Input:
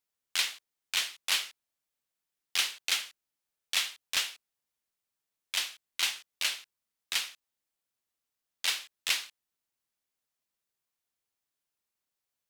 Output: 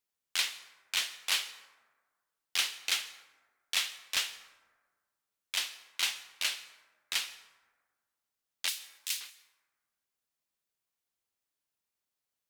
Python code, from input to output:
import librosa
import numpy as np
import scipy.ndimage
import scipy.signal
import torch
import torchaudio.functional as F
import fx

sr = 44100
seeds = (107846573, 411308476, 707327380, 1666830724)

y = fx.pre_emphasis(x, sr, coefficient=0.97, at=(8.68, 9.21))
y = fx.rev_plate(y, sr, seeds[0], rt60_s=1.5, hf_ratio=0.4, predelay_ms=115, drr_db=16.0)
y = F.gain(torch.from_numpy(y), -1.5).numpy()